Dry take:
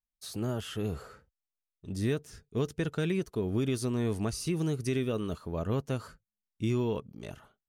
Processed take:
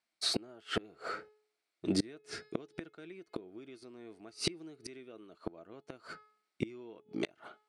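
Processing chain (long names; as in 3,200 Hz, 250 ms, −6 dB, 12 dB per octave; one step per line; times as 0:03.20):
loudspeaker in its box 250–8,800 Hz, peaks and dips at 330 Hz +10 dB, 690 Hz +8 dB, 1,400 Hz +6 dB, 2,200 Hz +9 dB, 4,300 Hz +6 dB, 6,600 Hz −6 dB
hum removal 425.3 Hz, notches 12
gate with flip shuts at −28 dBFS, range −31 dB
level +9.5 dB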